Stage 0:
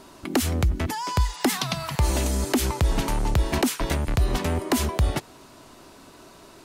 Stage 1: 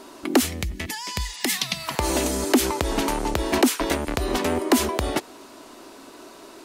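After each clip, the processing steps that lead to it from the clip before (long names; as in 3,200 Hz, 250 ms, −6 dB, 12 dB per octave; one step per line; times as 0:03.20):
gain on a spectral selection 0:00.46–0:01.87, 220–1,700 Hz −11 dB
low shelf with overshoot 200 Hz −10.5 dB, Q 1.5
level +3.5 dB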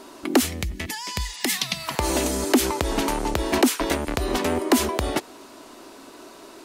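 no processing that can be heard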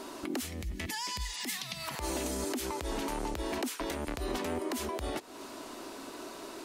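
downward compressor 4 to 1, threshold −32 dBFS, peak gain reduction 16 dB
brickwall limiter −24.5 dBFS, peak gain reduction 10 dB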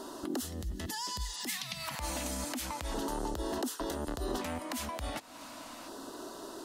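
auto-filter notch square 0.34 Hz 390–2,300 Hz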